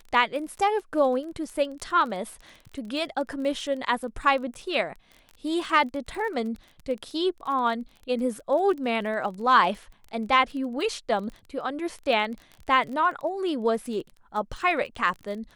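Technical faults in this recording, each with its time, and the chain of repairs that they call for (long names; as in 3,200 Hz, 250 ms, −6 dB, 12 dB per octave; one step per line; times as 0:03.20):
surface crackle 21 per second −34 dBFS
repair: click removal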